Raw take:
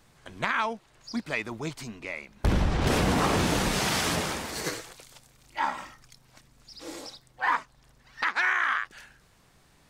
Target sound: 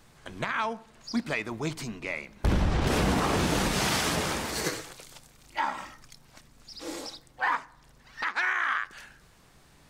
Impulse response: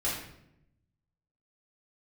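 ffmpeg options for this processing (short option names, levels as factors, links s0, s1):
-filter_complex "[0:a]alimiter=limit=0.119:level=0:latency=1:release=378,asplit=2[s0][s1];[1:a]atrim=start_sample=2205,lowpass=1700[s2];[s1][s2]afir=irnorm=-1:irlink=0,volume=0.0708[s3];[s0][s3]amix=inputs=2:normalize=0,volume=1.33"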